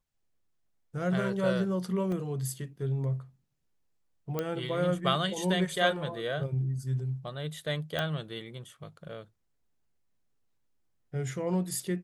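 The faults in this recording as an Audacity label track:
2.120000	2.120000	drop-out 2.5 ms
4.390000	4.390000	click −17 dBFS
7.990000	7.990000	click −17 dBFS

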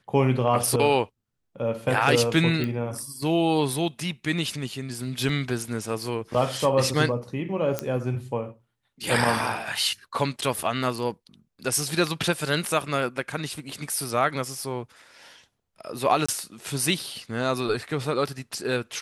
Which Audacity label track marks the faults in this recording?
2.640000	2.640000	click −16 dBFS
5.290000	5.290000	drop-out 3 ms
7.790000	7.790000	click −10 dBFS
16.260000	16.290000	drop-out 25 ms

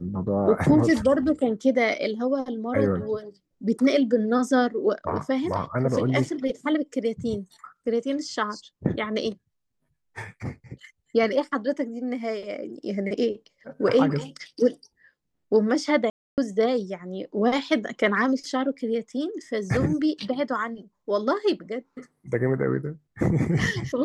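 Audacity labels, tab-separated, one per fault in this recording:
16.100000	16.380000	drop-out 278 ms

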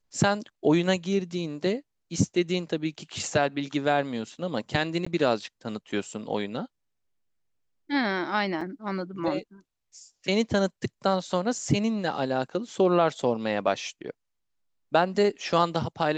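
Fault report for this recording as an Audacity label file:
5.050000	5.070000	drop-out 15 ms
8.610000	8.610000	drop-out 3.6 ms

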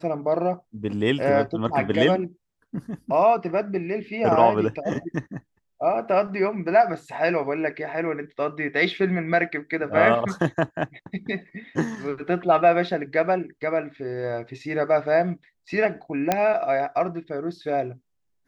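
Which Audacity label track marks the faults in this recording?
16.320000	16.320000	click −6 dBFS

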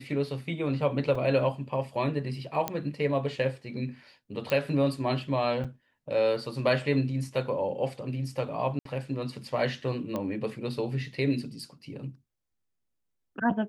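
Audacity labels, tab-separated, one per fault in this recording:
1.150000	1.150000	drop-out 3.8 ms
2.680000	2.680000	click −13 dBFS
4.500000	4.500000	click −15 dBFS
5.640000	5.650000	drop-out 6.3 ms
8.790000	8.850000	drop-out 63 ms
10.160000	10.160000	click −19 dBFS

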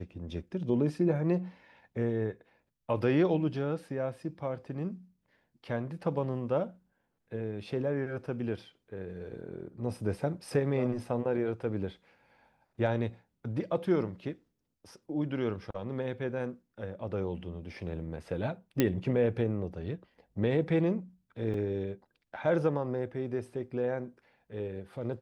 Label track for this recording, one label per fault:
18.800000	18.800000	click −11 dBFS
21.540000	21.540000	drop-out 2.9 ms

